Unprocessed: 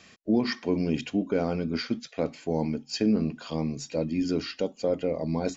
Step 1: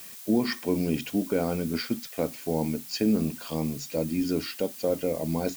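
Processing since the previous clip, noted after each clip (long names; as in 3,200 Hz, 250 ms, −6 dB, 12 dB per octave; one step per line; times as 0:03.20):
background noise blue −44 dBFS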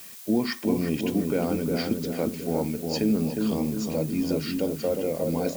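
feedback echo with a low-pass in the loop 358 ms, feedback 59%, low-pass 1,000 Hz, level −3 dB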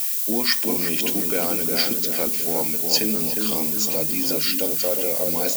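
spectral tilt +4 dB per octave
level +4.5 dB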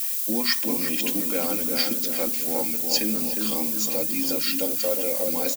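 comb filter 3.7 ms, depth 57%
level −4 dB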